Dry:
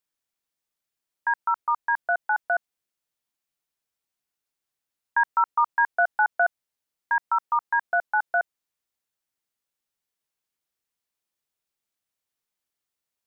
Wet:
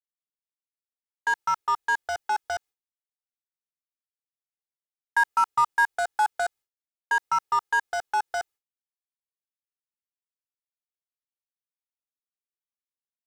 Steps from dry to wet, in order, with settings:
in parallel at −5 dB: wave folding −28 dBFS
on the sum: downward expander −38 dBFS
comb filter 2.4 ms, depth 56%
level −2.5 dB

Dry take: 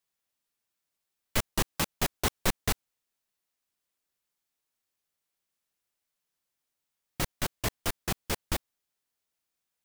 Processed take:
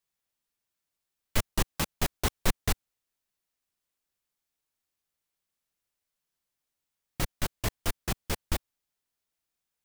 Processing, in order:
low-shelf EQ 110 Hz +6.5 dB
level −1.5 dB

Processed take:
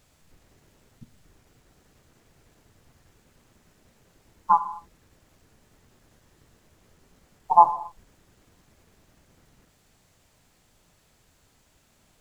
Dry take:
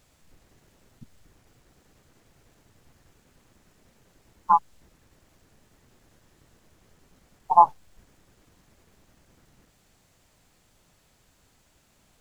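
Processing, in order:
reverb whose tail is shaped and stops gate 290 ms falling, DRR 10 dB

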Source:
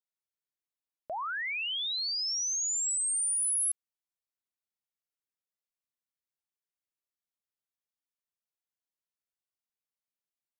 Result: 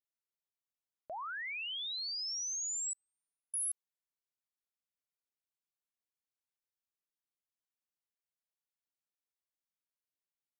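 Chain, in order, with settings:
0:02.93–0:03.54: Bessel low-pass filter 2,100 Hz, order 6
level −6.5 dB

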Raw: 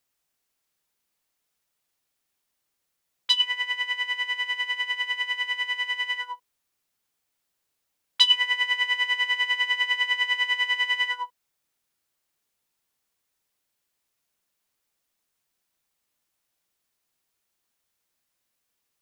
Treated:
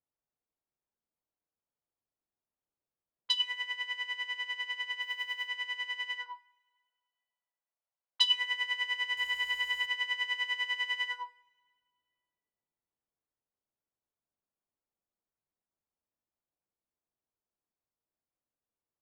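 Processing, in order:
0:09.17–0:09.86: converter with a step at zero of −38 dBFS
low-pass that shuts in the quiet parts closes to 900 Hz, open at −23 dBFS
0:05.02–0:05.48: floating-point word with a short mantissa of 4 bits
0:06.26–0:08.21: high-pass filter 590 Hz 24 dB per octave
coupled-rooms reverb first 0.61 s, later 2.1 s, from −17 dB, DRR 16 dB
level −8 dB

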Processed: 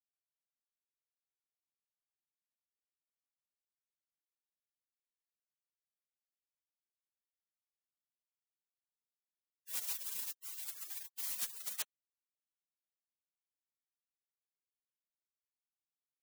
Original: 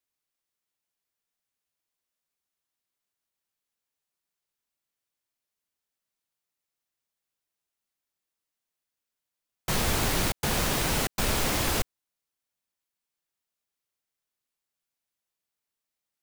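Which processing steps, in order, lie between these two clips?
gate on every frequency bin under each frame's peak −30 dB weak
soft clipping −33 dBFS, distortion −15 dB
level +3 dB

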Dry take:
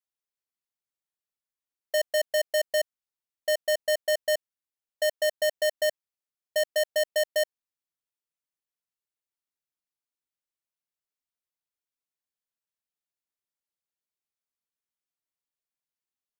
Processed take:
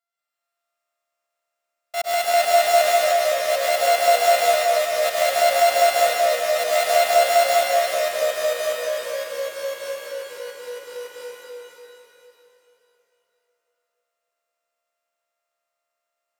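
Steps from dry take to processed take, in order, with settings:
samples sorted by size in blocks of 64 samples
high-pass filter 520 Hz 12 dB per octave
transient designer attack −9 dB, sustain +7 dB
on a send: delay that swaps between a low-pass and a high-pass 174 ms, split 2,100 Hz, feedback 54%, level −5.5 dB
on the sum: dense smooth reverb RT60 2.3 s, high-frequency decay 0.95×, pre-delay 95 ms, DRR −7 dB
delay with pitch and tempo change per echo 185 ms, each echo −2 semitones, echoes 3, each echo −6 dB
level +4.5 dB

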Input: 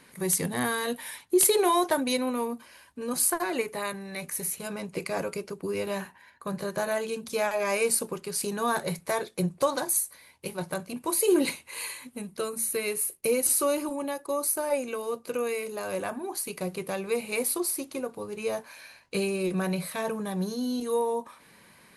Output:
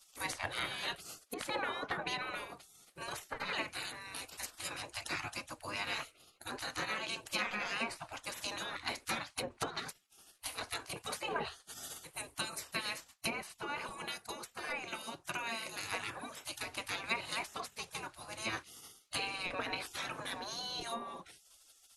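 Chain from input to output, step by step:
treble cut that deepens with the level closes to 1,500 Hz, closed at −21 dBFS
gate on every frequency bin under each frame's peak −20 dB weak
level +6 dB

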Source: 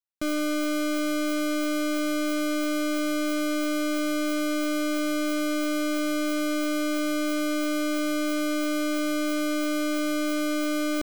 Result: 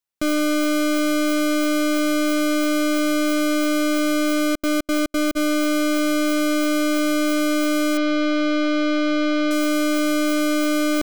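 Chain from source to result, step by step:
0:04.40–0:05.35: gate pattern ".xx.xx.xx" 178 BPM −60 dB
0:07.97–0:09.51: low-pass filter 4,800 Hz 24 dB per octave
level +6.5 dB

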